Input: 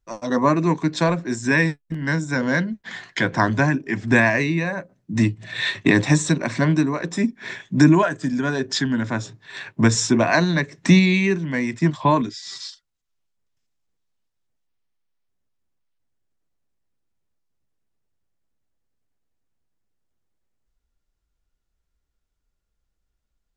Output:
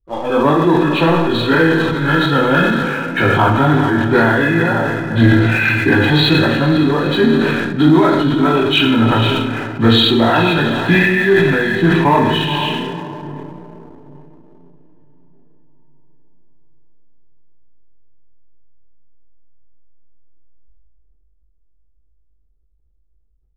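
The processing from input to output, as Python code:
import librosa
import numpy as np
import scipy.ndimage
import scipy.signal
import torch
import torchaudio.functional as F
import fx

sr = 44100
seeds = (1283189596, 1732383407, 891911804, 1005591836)

p1 = fx.freq_compress(x, sr, knee_hz=1100.0, ratio=1.5)
p2 = p1 + fx.echo_diffused(p1, sr, ms=488, feedback_pct=50, wet_db=-12.5, dry=0)
p3 = fx.chorus_voices(p2, sr, voices=6, hz=0.59, base_ms=20, depth_ms=2.4, mix_pct=40)
p4 = p3 + 0.5 * np.pad(p3, (int(2.4 * sr / 1000.0), 0))[:len(p3)]
p5 = fx.rider(p4, sr, range_db=4, speed_s=0.5)
p6 = fx.env_lowpass(p5, sr, base_hz=350.0, full_db=-22.5)
p7 = fx.rev_schroeder(p6, sr, rt60_s=0.88, comb_ms=27, drr_db=3.5)
p8 = fx.leveller(p7, sr, passes=1)
p9 = fx.high_shelf(p8, sr, hz=4700.0, db=6.0)
p10 = fx.sustainer(p9, sr, db_per_s=25.0)
y = p10 * 10.0 ** (4.5 / 20.0)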